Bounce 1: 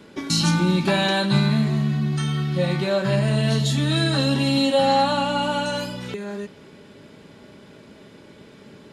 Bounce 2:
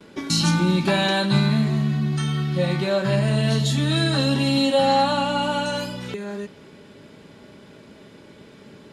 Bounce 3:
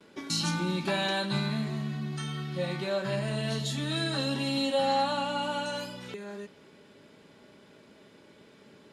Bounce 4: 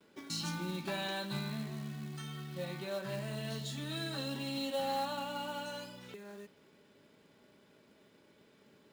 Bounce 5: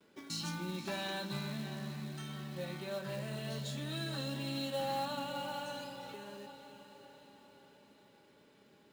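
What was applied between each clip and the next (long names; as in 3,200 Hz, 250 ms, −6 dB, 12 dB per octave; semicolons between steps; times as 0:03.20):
noise gate with hold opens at −39 dBFS
low-shelf EQ 170 Hz −8.5 dB; level −7.5 dB
floating-point word with a short mantissa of 2 bits; level −8.5 dB
feedback delay with all-pass diffusion 548 ms, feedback 53%, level −10.5 dB; level −1.5 dB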